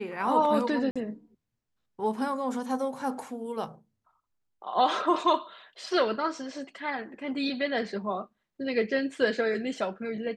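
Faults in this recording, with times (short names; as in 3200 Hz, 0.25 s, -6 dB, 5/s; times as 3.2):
0.91–0.96 gap 46 ms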